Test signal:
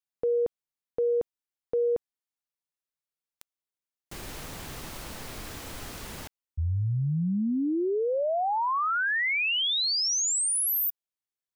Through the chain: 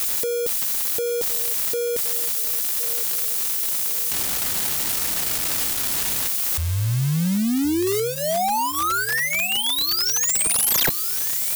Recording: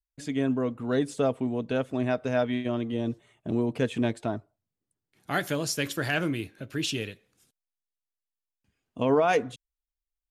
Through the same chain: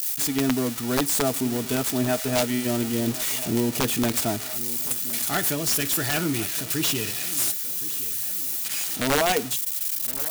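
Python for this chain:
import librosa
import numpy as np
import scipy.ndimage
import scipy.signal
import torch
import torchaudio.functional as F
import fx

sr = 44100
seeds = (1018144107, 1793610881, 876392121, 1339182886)

p1 = x + 0.5 * 10.0 ** (-19.0 / 20.0) * np.diff(np.sign(x), prepend=np.sign(x[:1]))
p2 = fx.rider(p1, sr, range_db=10, speed_s=0.5)
p3 = p1 + F.gain(torch.from_numpy(p2), 0.0).numpy()
p4 = fx.notch_comb(p3, sr, f0_hz=530.0)
p5 = (np.mod(10.0 ** (11.5 / 20.0) * p4 + 1.0, 2.0) - 1.0) / 10.0 ** (11.5 / 20.0)
p6 = fx.echo_feedback(p5, sr, ms=1066, feedback_pct=45, wet_db=-16.5)
y = F.gain(torch.from_numpy(p6), -3.0).numpy()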